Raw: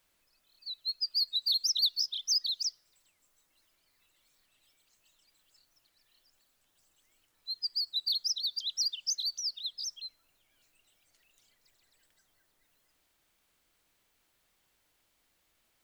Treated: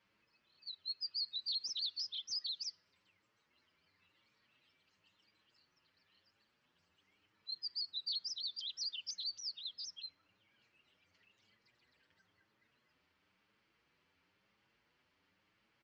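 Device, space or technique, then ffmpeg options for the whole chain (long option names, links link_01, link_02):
barber-pole flanger into a guitar amplifier: -filter_complex "[0:a]asplit=2[link_01][link_02];[link_02]adelay=7.1,afreqshift=0.97[link_03];[link_01][link_03]amix=inputs=2:normalize=1,asoftclip=type=tanh:threshold=-31.5dB,highpass=87,equalizer=frequency=92:width_type=q:width=4:gain=5,equalizer=frequency=190:width_type=q:width=4:gain=5,equalizer=frequency=690:width_type=q:width=4:gain=-7,equalizer=frequency=3700:width_type=q:width=4:gain=-8,lowpass=frequency=4300:width=0.5412,lowpass=frequency=4300:width=1.3066,volume=4.5dB"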